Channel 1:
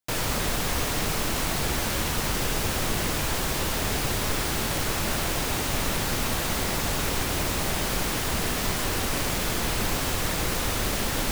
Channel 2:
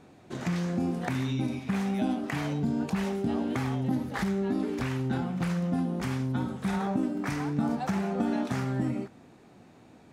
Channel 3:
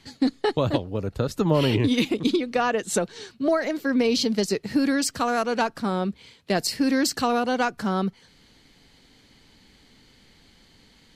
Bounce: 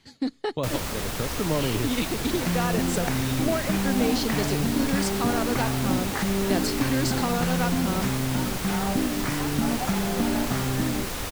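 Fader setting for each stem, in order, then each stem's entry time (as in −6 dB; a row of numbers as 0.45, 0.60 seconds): −4.5, +2.5, −5.5 decibels; 0.55, 2.00, 0.00 seconds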